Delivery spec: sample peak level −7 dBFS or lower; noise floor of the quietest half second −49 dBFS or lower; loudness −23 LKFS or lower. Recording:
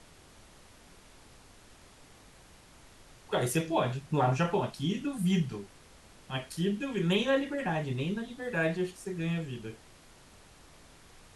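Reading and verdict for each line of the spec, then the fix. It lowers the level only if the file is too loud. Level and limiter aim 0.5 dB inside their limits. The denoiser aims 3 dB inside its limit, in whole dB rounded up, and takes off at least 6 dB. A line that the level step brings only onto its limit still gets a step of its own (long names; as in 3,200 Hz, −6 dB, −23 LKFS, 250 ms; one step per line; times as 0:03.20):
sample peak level −15.0 dBFS: in spec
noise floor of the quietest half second −56 dBFS: in spec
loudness −31.5 LKFS: in spec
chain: no processing needed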